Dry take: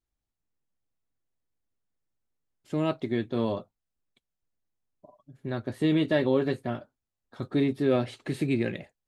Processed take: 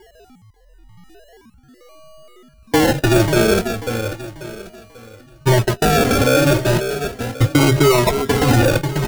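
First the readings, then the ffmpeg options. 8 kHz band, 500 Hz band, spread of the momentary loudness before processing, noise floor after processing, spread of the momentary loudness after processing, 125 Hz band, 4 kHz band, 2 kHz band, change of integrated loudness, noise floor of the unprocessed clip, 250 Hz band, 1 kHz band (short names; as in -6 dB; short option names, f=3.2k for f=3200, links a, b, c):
n/a, +12.5 dB, 12 LU, -50 dBFS, 12 LU, +16.5 dB, +18.5 dB, +17.5 dB, +12.0 dB, under -85 dBFS, +9.5 dB, +18.5 dB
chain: -filter_complex "[0:a]aeval=exprs='val(0)+0.5*0.0133*sgn(val(0))':c=same,agate=range=-38dB:threshold=-31dB:ratio=16:detection=peak,aecho=1:1:2:0.54,acompressor=threshold=-29dB:ratio=6,highshelf=f=1.6k:t=q:w=3:g=14,adynamicsmooth=sensitivity=1.5:basefreq=520,aresample=8000,asoftclip=type=tanh:threshold=-28dB,aresample=44100,aeval=exprs='val(0)+0.000316*sin(2*PI*2900*n/s)':c=same,acrusher=samples=35:mix=1:aa=0.000001:lfo=1:lforange=21:lforate=0.36,asplit=2[a][b];[b]aecho=0:1:540|1080|1620|2160:0.251|0.0879|0.0308|0.0108[c];[a][c]amix=inputs=2:normalize=0,alimiter=level_in=32dB:limit=-1dB:release=50:level=0:latency=1,asplit=2[d][e];[e]adelay=2.7,afreqshift=0.88[f];[d][f]amix=inputs=2:normalize=1,volume=-3.5dB"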